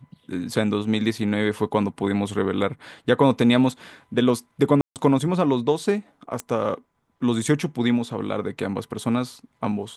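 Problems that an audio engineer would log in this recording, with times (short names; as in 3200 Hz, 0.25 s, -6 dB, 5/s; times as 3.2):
4.81–4.96 gap 0.148 s
6.4 pop -14 dBFS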